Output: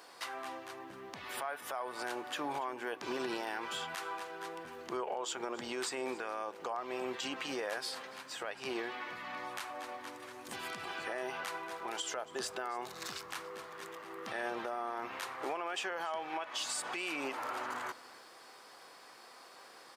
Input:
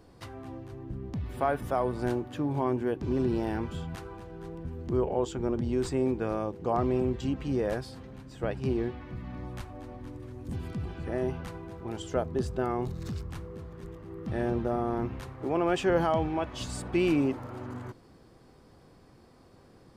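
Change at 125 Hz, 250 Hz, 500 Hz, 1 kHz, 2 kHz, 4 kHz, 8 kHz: -27.5, -15.0, -10.5, -3.0, +2.5, +4.5, +5.5 dB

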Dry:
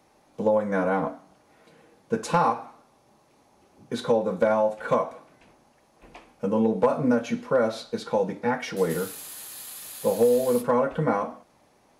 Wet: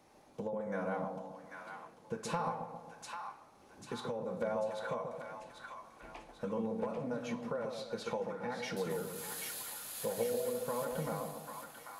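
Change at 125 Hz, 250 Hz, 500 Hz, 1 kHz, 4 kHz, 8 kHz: -11.5, -14.0, -13.5, -13.0, -7.0, -5.5 dB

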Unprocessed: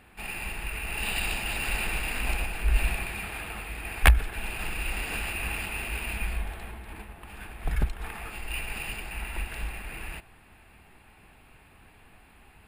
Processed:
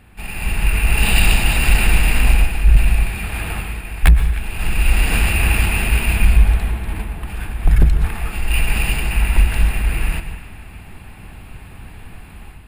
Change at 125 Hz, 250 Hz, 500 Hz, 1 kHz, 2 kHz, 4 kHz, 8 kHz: +15.5, +14.5, +9.5, +8.5, +9.0, +10.5, +11.5 dB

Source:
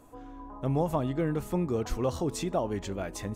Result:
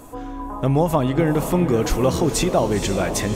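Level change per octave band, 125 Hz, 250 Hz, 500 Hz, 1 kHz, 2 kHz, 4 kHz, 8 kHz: +10.5, +10.5, +10.5, +11.0, +14.0, +14.5, +15.0 dB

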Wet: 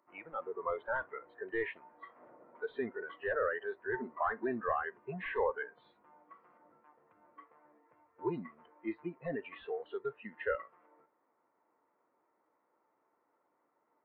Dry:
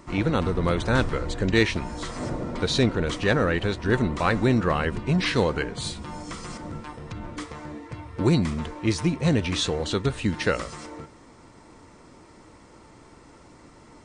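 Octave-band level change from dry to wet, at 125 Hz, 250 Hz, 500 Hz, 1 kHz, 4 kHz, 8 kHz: -28.5 dB, -19.5 dB, -11.0 dB, -9.0 dB, -30.5 dB, under -40 dB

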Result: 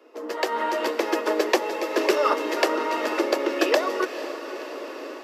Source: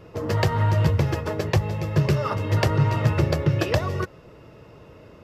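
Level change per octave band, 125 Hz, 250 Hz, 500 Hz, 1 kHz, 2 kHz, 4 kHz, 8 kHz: under -40 dB, -0.5 dB, +4.5 dB, +4.0 dB, +4.0 dB, +4.0 dB, +4.0 dB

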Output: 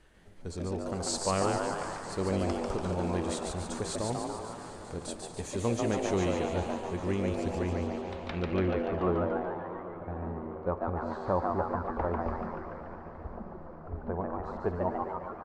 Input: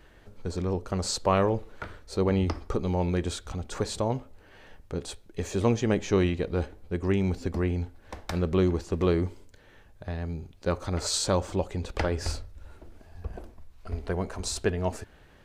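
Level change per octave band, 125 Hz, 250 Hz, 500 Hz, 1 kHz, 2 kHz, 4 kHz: -6.0, -3.5, -2.5, +1.5, -3.0, -6.5 dB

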